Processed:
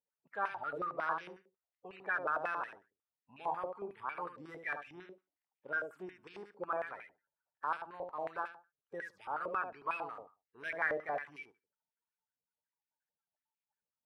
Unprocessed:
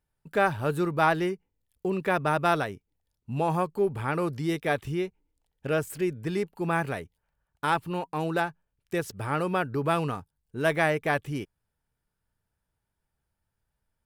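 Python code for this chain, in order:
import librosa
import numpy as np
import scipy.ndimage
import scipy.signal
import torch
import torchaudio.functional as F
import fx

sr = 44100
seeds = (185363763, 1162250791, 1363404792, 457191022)

y = fx.spec_quant(x, sr, step_db=30)
y = fx.echo_feedback(y, sr, ms=74, feedback_pct=15, wet_db=-7.0)
y = fx.filter_held_bandpass(y, sr, hz=11.0, low_hz=550.0, high_hz=2400.0)
y = y * librosa.db_to_amplitude(-2.5)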